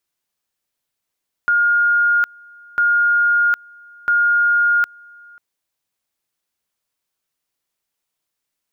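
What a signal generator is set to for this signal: two-level tone 1420 Hz -12 dBFS, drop 28 dB, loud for 0.76 s, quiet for 0.54 s, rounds 3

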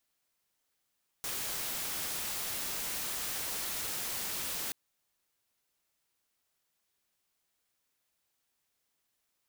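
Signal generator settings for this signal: noise white, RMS -36.5 dBFS 3.48 s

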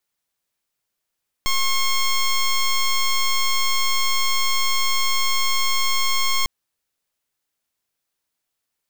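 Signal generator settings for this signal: pulse 1080 Hz, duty 10% -18.5 dBFS 5.00 s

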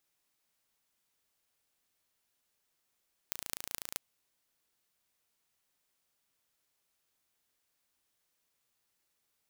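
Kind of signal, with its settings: pulse train 28.1/s, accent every 6, -6.5 dBFS 0.66 s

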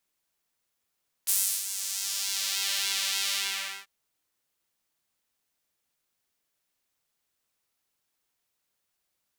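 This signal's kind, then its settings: synth patch with pulse-width modulation G3, filter highpass, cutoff 1800 Hz, Q 1.1, filter envelope 2.5 oct, filter decay 1.44 s, filter sustain 40%, attack 19 ms, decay 0.34 s, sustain -12.5 dB, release 0.54 s, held 2.05 s, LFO 1.7 Hz, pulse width 49%, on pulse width 18%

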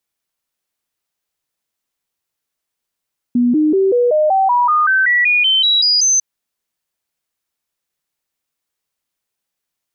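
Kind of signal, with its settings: stepped sine 243 Hz up, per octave 3, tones 15, 0.19 s, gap 0.00 s -10 dBFS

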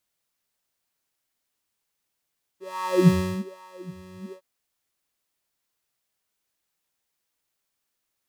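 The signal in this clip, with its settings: synth patch with filter wobble F#3, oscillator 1 square, oscillator 2 square, interval +12 st, oscillator 2 level -3.5 dB, filter highpass, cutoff 210 Hz, Q 6.8, filter envelope 0.5 oct, filter decay 1.27 s, attack 0.471 s, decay 0.37 s, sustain -22.5 dB, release 0.08 s, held 1.73 s, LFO 1.2 Hz, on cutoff 1.8 oct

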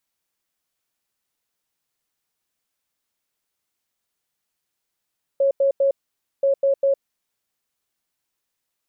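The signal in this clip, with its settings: beep pattern sine 550 Hz, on 0.11 s, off 0.09 s, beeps 3, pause 0.52 s, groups 2, -14.5 dBFS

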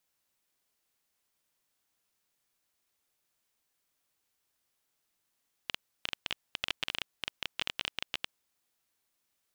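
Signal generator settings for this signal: random clicks 14/s -14 dBFS 2.77 s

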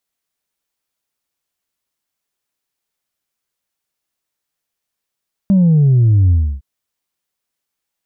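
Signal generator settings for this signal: sub drop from 200 Hz, over 1.11 s, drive 1 dB, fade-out 0.30 s, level -8 dB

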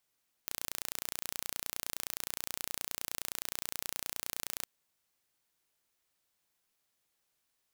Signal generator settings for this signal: pulse train 29.6/s, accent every 0, -9 dBFS 4.18 s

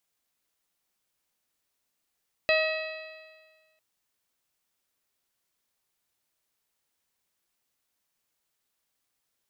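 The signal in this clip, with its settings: stretched partials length 1.30 s, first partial 629 Hz, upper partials -13/-5.5/-2/-18.5/-9/-17.5 dB, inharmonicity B 0.0034, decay 1.54 s, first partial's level -21.5 dB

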